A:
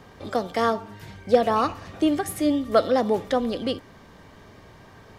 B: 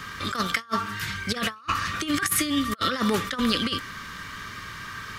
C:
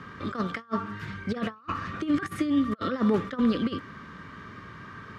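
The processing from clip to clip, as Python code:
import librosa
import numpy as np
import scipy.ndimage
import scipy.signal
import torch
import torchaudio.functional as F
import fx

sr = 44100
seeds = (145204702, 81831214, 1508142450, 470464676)

y1 = fx.curve_eq(x, sr, hz=(190.0, 790.0, 1200.0, 2100.0), db=(0, -12, 14, 11))
y1 = fx.over_compress(y1, sr, threshold_db=-26.0, ratio=-0.5)
y2 = fx.bandpass_q(y1, sr, hz=280.0, q=0.56)
y2 = F.gain(torch.from_numpy(y2), 2.0).numpy()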